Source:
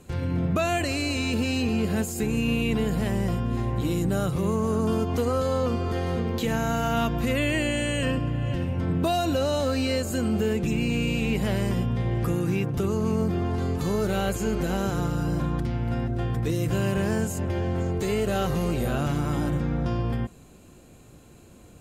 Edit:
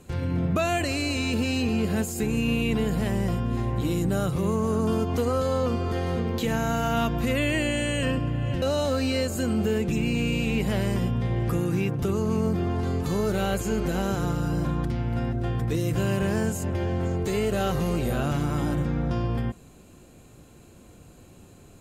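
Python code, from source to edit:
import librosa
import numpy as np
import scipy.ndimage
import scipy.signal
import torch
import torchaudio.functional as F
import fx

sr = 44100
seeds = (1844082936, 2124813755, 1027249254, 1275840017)

y = fx.edit(x, sr, fx.cut(start_s=8.62, length_s=0.75), tone=tone)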